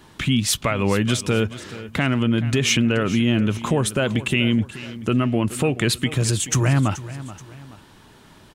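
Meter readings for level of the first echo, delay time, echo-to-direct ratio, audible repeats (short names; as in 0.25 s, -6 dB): -15.5 dB, 0.429 s, -15.0 dB, 2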